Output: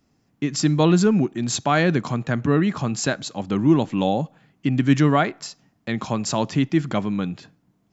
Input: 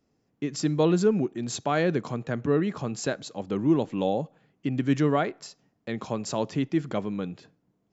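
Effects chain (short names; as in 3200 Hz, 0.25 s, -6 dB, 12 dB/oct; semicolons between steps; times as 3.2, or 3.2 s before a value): bell 460 Hz -8 dB 0.87 oct; gain +8.5 dB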